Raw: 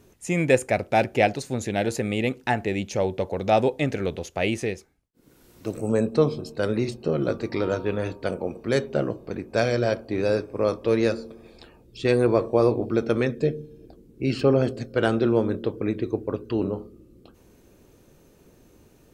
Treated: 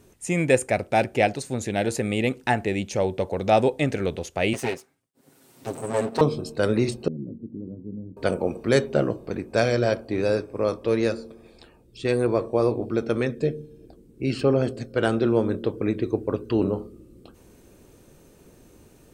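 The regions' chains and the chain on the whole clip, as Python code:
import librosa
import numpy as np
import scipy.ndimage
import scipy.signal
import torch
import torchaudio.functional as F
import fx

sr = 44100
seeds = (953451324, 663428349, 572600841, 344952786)

y = fx.chain(x, sr, fx.lower_of_two(delay_ms=7.5),
    fx.highpass(hz=140.0, slope=12), at=(4.53, 6.21))
y = fx.chain(y, sr, fx.ladder_lowpass(hz=270.0, resonance_pct=50),
    fx.tilt_eq(slope=1.5), at=(7.08, 8.17))
y = fx.peak_eq(y, sr, hz=8600.0, db=7.0, octaves=0.25)
y = fx.rider(y, sr, range_db=10, speed_s=2.0)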